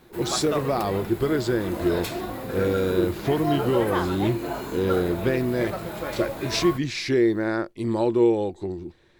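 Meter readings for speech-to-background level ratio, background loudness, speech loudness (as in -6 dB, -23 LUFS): 5.5 dB, -30.5 LUFS, -25.0 LUFS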